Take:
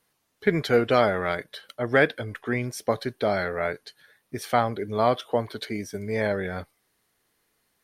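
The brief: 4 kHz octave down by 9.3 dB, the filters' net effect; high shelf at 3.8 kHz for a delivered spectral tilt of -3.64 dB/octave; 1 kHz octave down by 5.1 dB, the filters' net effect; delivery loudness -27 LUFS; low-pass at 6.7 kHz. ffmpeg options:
-af "lowpass=6700,equalizer=f=1000:t=o:g=-7,highshelf=f=3800:g=-6.5,equalizer=f=4000:t=o:g=-7,volume=1.12"

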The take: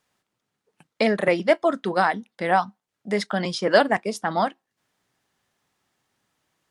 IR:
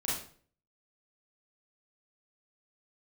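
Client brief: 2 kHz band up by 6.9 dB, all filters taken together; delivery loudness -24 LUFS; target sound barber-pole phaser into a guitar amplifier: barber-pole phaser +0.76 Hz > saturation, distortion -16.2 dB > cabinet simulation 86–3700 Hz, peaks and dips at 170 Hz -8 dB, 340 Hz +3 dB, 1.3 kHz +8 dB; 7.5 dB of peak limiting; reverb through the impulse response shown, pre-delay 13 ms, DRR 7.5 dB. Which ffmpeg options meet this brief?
-filter_complex "[0:a]equalizer=f=2000:t=o:g=6.5,alimiter=limit=0.355:level=0:latency=1,asplit=2[s0][s1];[1:a]atrim=start_sample=2205,adelay=13[s2];[s1][s2]afir=irnorm=-1:irlink=0,volume=0.237[s3];[s0][s3]amix=inputs=2:normalize=0,asplit=2[s4][s5];[s5]afreqshift=0.76[s6];[s4][s6]amix=inputs=2:normalize=1,asoftclip=threshold=0.168,highpass=86,equalizer=f=170:t=q:w=4:g=-8,equalizer=f=340:t=q:w=4:g=3,equalizer=f=1300:t=q:w=4:g=8,lowpass=f=3700:w=0.5412,lowpass=f=3700:w=1.3066,volume=1.19"

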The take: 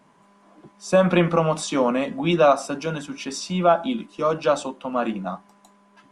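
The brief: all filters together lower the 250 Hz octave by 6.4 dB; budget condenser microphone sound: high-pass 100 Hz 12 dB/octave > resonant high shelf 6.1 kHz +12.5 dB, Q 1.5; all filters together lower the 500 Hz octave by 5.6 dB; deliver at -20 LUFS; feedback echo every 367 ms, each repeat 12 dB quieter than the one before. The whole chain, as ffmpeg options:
-af "highpass=100,equalizer=f=250:t=o:g=-7.5,equalizer=f=500:t=o:g=-5.5,highshelf=f=6100:t=q:w=1.5:g=12.5,aecho=1:1:367|734|1101:0.251|0.0628|0.0157,volume=1.78"

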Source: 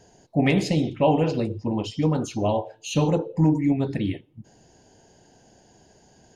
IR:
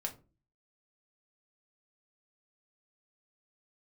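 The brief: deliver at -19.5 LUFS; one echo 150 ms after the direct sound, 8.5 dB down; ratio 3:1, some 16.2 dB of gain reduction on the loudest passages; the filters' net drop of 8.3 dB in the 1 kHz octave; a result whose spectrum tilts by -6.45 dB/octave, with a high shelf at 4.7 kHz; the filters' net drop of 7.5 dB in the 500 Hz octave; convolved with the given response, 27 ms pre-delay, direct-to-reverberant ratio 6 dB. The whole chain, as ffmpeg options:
-filter_complex "[0:a]equalizer=f=500:t=o:g=-7,equalizer=f=1000:t=o:g=-8,highshelf=f=4700:g=-6,acompressor=threshold=0.0112:ratio=3,aecho=1:1:150:0.376,asplit=2[s0][s1];[1:a]atrim=start_sample=2205,adelay=27[s2];[s1][s2]afir=irnorm=-1:irlink=0,volume=0.473[s3];[s0][s3]amix=inputs=2:normalize=0,volume=8.41"

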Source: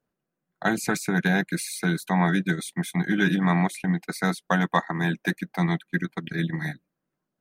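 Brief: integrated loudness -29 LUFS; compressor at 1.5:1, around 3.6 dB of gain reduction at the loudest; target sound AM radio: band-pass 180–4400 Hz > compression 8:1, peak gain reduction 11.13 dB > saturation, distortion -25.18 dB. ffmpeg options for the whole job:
-af "acompressor=threshold=0.0447:ratio=1.5,highpass=180,lowpass=4400,acompressor=threshold=0.0282:ratio=8,asoftclip=threshold=0.106,volume=2.51"

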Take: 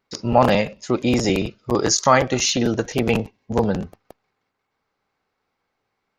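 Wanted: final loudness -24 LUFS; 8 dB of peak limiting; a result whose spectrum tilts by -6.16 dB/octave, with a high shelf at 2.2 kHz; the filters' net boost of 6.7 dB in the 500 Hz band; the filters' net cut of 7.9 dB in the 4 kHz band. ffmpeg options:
-af "equalizer=f=500:t=o:g=8.5,highshelf=f=2200:g=-6.5,equalizer=f=4000:t=o:g=-4,volume=0.596,alimiter=limit=0.282:level=0:latency=1"

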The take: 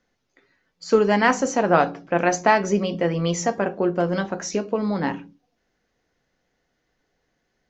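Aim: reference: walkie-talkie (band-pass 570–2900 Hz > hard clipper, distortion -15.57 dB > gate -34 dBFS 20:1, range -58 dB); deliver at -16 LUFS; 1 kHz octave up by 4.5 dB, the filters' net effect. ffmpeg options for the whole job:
-af "highpass=570,lowpass=2900,equalizer=f=1000:t=o:g=7,asoftclip=type=hard:threshold=0.398,agate=range=0.00126:threshold=0.02:ratio=20,volume=2.11"

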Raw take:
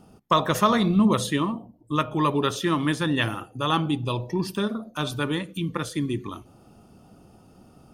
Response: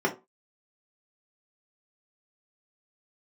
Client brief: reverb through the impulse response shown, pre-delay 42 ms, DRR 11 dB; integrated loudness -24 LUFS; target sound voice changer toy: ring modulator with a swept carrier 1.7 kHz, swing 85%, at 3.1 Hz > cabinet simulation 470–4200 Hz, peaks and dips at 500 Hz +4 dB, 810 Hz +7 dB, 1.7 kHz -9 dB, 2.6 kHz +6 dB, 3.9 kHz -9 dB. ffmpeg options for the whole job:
-filter_complex "[0:a]asplit=2[s0][s1];[1:a]atrim=start_sample=2205,adelay=42[s2];[s1][s2]afir=irnorm=-1:irlink=0,volume=0.0668[s3];[s0][s3]amix=inputs=2:normalize=0,aeval=exprs='val(0)*sin(2*PI*1700*n/s+1700*0.85/3.1*sin(2*PI*3.1*n/s))':c=same,highpass=470,equalizer=f=500:t=q:w=4:g=4,equalizer=f=810:t=q:w=4:g=7,equalizer=f=1700:t=q:w=4:g=-9,equalizer=f=2600:t=q:w=4:g=6,equalizer=f=3900:t=q:w=4:g=-9,lowpass=f=4200:w=0.5412,lowpass=f=4200:w=1.3066,volume=1.19"

